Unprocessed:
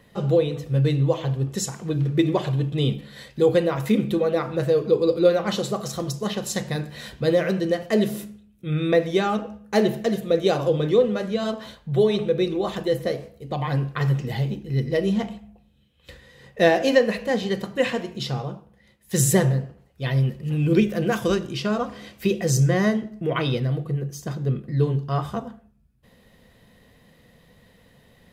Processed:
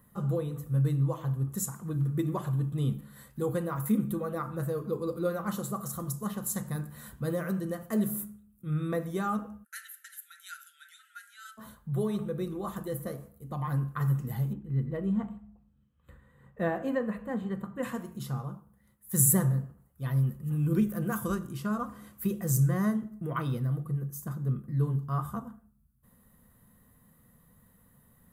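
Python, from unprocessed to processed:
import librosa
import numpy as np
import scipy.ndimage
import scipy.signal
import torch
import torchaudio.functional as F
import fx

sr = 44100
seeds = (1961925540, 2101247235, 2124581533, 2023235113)

y = fx.brickwall_bandpass(x, sr, low_hz=1300.0, high_hz=13000.0, at=(9.63, 11.57), fade=0.02)
y = fx.moving_average(y, sr, points=8, at=(14.53, 17.83))
y = fx.curve_eq(y, sr, hz=(230.0, 400.0, 720.0, 1200.0, 2400.0, 5200.0, 7800.0, 12000.0), db=(0, -9, -8, 3, -15, -13, 2, 12))
y = F.gain(torch.from_numpy(y), -5.5).numpy()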